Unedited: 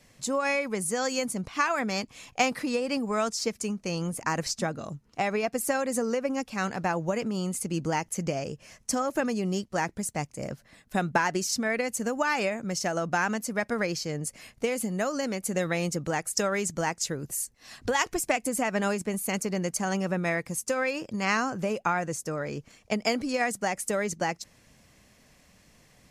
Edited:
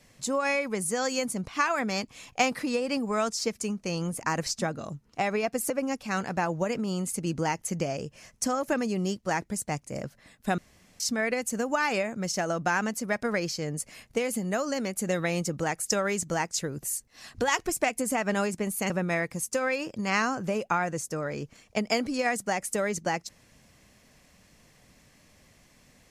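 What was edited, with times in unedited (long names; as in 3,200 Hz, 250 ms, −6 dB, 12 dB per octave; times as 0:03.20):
0:05.70–0:06.17: remove
0:11.05–0:11.47: fill with room tone
0:19.37–0:20.05: remove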